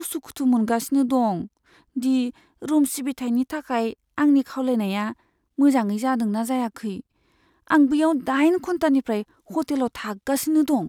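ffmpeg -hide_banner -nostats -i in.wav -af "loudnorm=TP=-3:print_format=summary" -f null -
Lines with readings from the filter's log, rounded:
Input Integrated:    -22.7 LUFS
Input True Peak:      -6.0 dBTP
Input LRA:             1.3 LU
Input Threshold:     -33.1 LUFS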